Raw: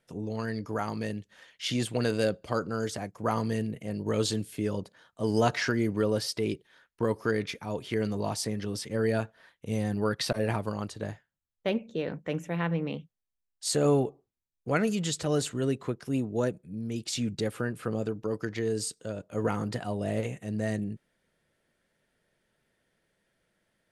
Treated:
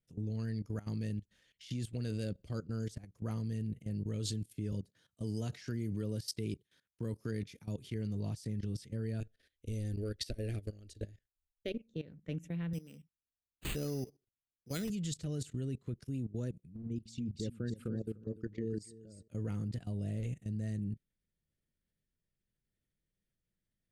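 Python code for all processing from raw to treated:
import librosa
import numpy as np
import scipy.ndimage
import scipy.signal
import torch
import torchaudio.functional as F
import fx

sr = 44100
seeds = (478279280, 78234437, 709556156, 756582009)

y = fx.chain(x, sr, fx.highpass(hz=77.0, slope=12),
    fx.high_shelf(hz=5900.0, db=6.5), at=(4.72, 7.9))
y = fx.chain(y, sr, fx.transient(attack_db=8, sustain_db=1),
    fx.fixed_phaser(hz=400.0, stages=4), at=(9.2, 11.91))
y = fx.chain(y, sr, fx.highpass(hz=250.0, slope=6),
    fx.high_shelf(hz=5600.0, db=8.5),
    fx.resample_bad(factor=8, down='none', up='hold'), at=(12.73, 14.9))
y = fx.chain(y, sr, fx.envelope_sharpen(power=1.5),
    fx.peak_eq(hz=120.0, db=-3.5, octaves=0.71),
    fx.echo_feedback(ms=296, feedback_pct=20, wet_db=-8.5), at=(16.76, 19.28))
y = fx.tone_stack(y, sr, knobs='10-0-1')
y = fx.level_steps(y, sr, step_db=17)
y = y * 10.0 ** (14.5 / 20.0)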